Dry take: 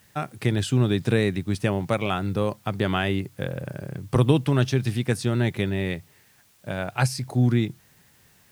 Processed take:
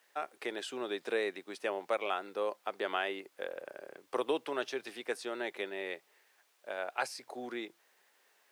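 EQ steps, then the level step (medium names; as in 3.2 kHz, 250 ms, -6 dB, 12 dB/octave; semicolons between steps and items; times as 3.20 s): high-pass 410 Hz 24 dB/octave; treble shelf 4.5 kHz -9 dB; -6.0 dB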